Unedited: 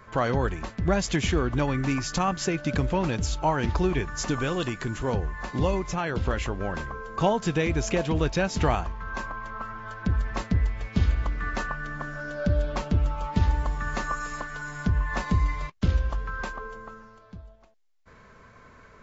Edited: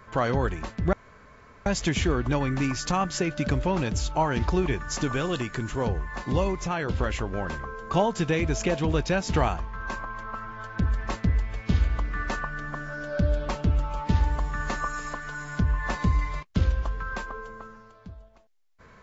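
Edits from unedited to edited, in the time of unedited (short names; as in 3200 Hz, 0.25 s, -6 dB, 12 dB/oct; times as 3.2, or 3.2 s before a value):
0.93 insert room tone 0.73 s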